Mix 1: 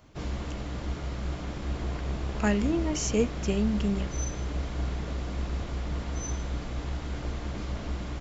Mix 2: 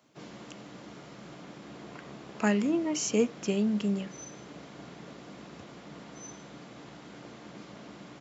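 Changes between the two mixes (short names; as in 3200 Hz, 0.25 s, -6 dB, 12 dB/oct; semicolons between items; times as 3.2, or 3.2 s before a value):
background -7.5 dB; master: add HPF 150 Hz 24 dB/oct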